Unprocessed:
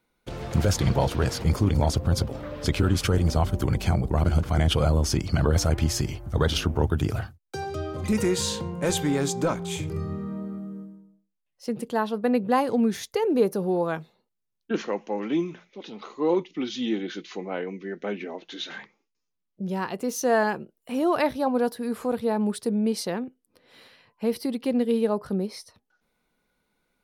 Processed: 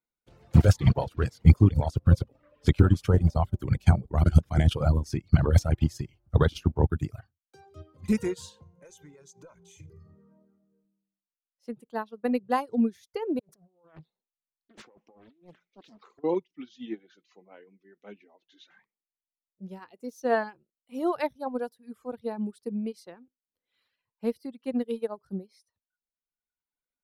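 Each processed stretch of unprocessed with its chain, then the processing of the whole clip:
8.62–10.85 s: peaking EQ 6.2 kHz +12 dB 0.23 oct + comb 2 ms, depth 44% + compression 8:1, threshold -27 dBFS
13.39–16.24 s: median filter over 3 samples + compressor with a negative ratio -35 dBFS + loudspeaker Doppler distortion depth 0.91 ms
whole clip: reverb removal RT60 1.6 s; dynamic bell 110 Hz, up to +5 dB, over -38 dBFS, Q 0.81; upward expansion 2.5:1, over -32 dBFS; trim +5.5 dB

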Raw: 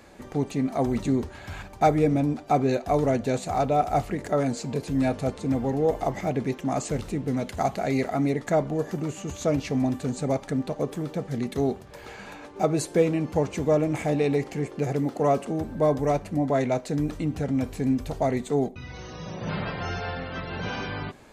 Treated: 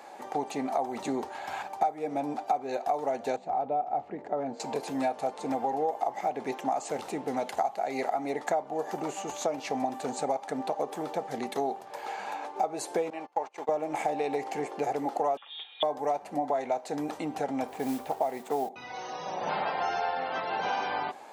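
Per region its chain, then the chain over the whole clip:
3.36–4.60 s: low-pass 1.8 kHz + peaking EQ 1.2 kHz -11.5 dB 2.8 oct
13.10–13.69 s: high-pass 950 Hz 6 dB/octave + treble shelf 5.2 kHz -12 dB + gate -40 dBFS, range -25 dB
15.37–15.83 s: high-pass 830 Hz + frequency inversion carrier 4 kHz
17.67–18.69 s: median filter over 9 samples + modulation noise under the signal 23 dB
whole clip: high-pass 380 Hz 12 dB/octave; peaking EQ 810 Hz +14 dB 0.56 oct; compression 6:1, threshold -26 dBFS

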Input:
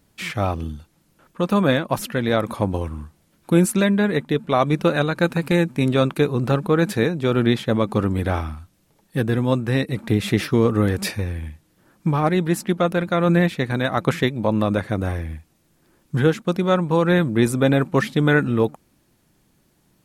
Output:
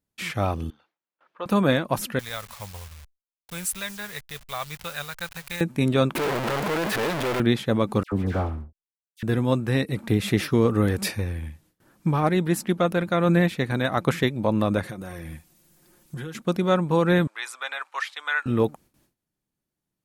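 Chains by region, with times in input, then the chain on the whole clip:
0.70–1.46 s: high-pass 680 Hz + distance through air 290 m
2.19–5.61 s: send-on-delta sampling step -31.5 dBFS + amplifier tone stack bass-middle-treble 10-0-10
6.15–7.40 s: one-bit comparator + tone controls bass -10 dB, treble -11 dB
8.03–9.23 s: treble shelf 2.8 kHz -8.5 dB + hysteresis with a dead band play -30.5 dBFS + phase dispersion lows, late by 91 ms, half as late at 1.6 kHz
14.83–16.35 s: treble shelf 4.1 kHz +8 dB + comb 5.6 ms, depth 54% + compression 12:1, threshold -28 dBFS
17.27–18.46 s: high-pass 960 Hz 24 dB/octave + distance through air 60 m
whole clip: treble shelf 9.5 kHz +4 dB; gate with hold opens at -50 dBFS; trim -2.5 dB

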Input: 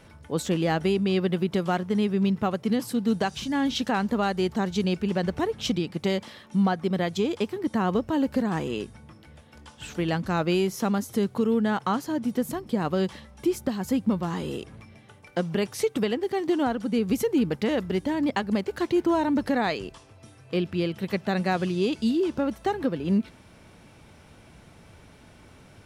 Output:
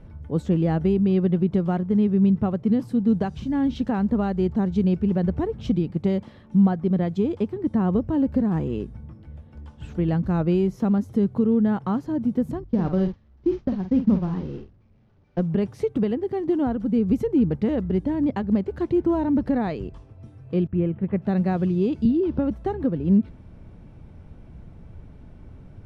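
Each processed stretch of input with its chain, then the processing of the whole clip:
12.64–15.40 s: one-bit delta coder 32 kbps, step -33.5 dBFS + expander -27 dBFS + doubling 49 ms -8.5 dB
20.67–21.22 s: low-pass 2.5 kHz 24 dB/octave + expander -41 dBFS
22.05–22.51 s: Savitzky-Golay filter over 15 samples + three bands compressed up and down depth 70%
whole clip: tilt EQ -4.5 dB/octave; hum notches 50/100 Hz; trim -5 dB

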